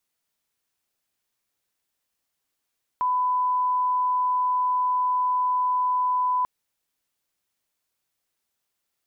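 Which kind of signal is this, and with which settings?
line-up tone −20 dBFS 3.44 s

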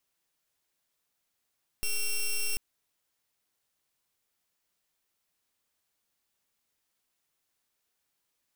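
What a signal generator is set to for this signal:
pulse wave 2,730 Hz, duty 9% −28.5 dBFS 0.74 s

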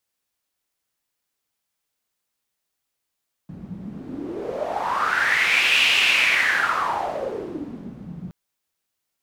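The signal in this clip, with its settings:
wind from filtered noise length 4.82 s, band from 170 Hz, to 2,700 Hz, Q 5.9, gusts 1, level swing 18.5 dB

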